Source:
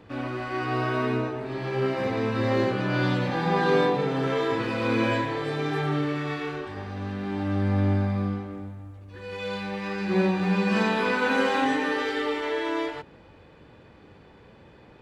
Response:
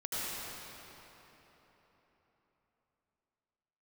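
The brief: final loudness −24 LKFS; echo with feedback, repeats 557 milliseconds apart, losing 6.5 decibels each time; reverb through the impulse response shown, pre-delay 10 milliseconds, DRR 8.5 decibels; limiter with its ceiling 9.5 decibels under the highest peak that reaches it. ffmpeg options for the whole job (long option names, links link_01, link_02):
-filter_complex "[0:a]alimiter=limit=-20dB:level=0:latency=1,aecho=1:1:557|1114|1671|2228|2785|3342:0.473|0.222|0.105|0.0491|0.0231|0.0109,asplit=2[link_01][link_02];[1:a]atrim=start_sample=2205,adelay=10[link_03];[link_02][link_03]afir=irnorm=-1:irlink=0,volume=-14.5dB[link_04];[link_01][link_04]amix=inputs=2:normalize=0,volume=4dB"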